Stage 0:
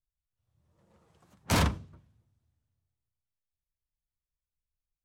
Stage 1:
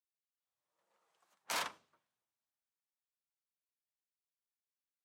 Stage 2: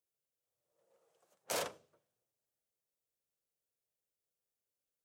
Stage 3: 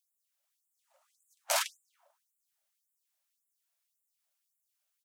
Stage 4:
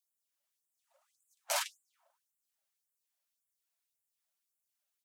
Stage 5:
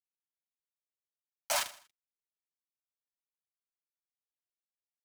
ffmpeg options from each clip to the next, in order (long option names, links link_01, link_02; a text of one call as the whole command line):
ffmpeg -i in.wav -af "highpass=760,volume=-7dB" out.wav
ffmpeg -i in.wav -af "equalizer=frequency=125:width_type=o:width=1:gain=6,equalizer=frequency=250:width_type=o:width=1:gain=-4,equalizer=frequency=500:width_type=o:width=1:gain=11,equalizer=frequency=1000:width_type=o:width=1:gain=-9,equalizer=frequency=2000:width_type=o:width=1:gain=-6,equalizer=frequency=4000:width_type=o:width=1:gain=-5,volume=3.5dB" out.wav
ffmpeg -i in.wav -filter_complex "[0:a]asplit=2[link_01][link_02];[link_02]adelay=147,lowpass=frequency=1300:poles=1,volume=-21.5dB,asplit=2[link_03][link_04];[link_04]adelay=147,lowpass=frequency=1300:poles=1,volume=0.53,asplit=2[link_05][link_06];[link_06]adelay=147,lowpass=frequency=1300:poles=1,volume=0.53,asplit=2[link_07][link_08];[link_08]adelay=147,lowpass=frequency=1300:poles=1,volume=0.53[link_09];[link_01][link_03][link_05][link_07][link_09]amix=inputs=5:normalize=0,afftfilt=real='re*gte(b*sr/1024,530*pow(7100/530,0.5+0.5*sin(2*PI*1.8*pts/sr)))':imag='im*gte(b*sr/1024,530*pow(7100/530,0.5+0.5*sin(2*PI*1.8*pts/sr)))':win_size=1024:overlap=0.75,volume=9dB" out.wav
ffmpeg -i in.wav -af "flanger=delay=0.4:depth=9.3:regen=24:speed=0.86:shape=triangular" out.wav
ffmpeg -i in.wav -af "acrusher=bits=5:mix=0:aa=0.5,aecho=1:1:79|158|237:0.158|0.0586|0.0217,volume=2dB" out.wav